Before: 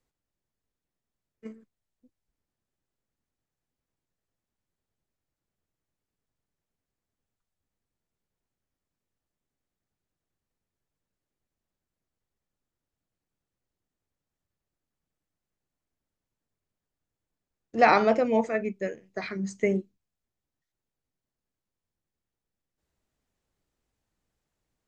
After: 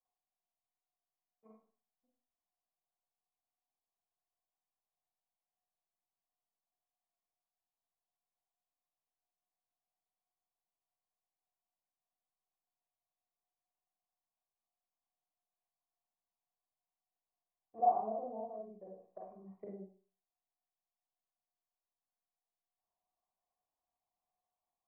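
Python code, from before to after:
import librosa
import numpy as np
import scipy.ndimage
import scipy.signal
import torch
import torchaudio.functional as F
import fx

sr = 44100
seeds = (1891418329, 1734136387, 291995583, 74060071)

y = fx.formant_cascade(x, sr, vowel='a')
y = fx.env_lowpass_down(y, sr, base_hz=390.0, full_db=-45.5)
y = fx.rev_schroeder(y, sr, rt60_s=0.4, comb_ms=33, drr_db=-2.5)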